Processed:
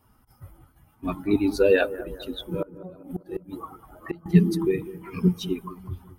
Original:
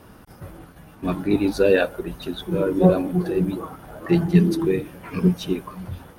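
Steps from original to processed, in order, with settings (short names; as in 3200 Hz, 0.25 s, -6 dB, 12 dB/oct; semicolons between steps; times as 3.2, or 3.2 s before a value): per-bin expansion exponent 1.5; 2.62–4.26 flipped gate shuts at -18 dBFS, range -25 dB; analogue delay 0.199 s, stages 2048, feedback 52%, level -16 dB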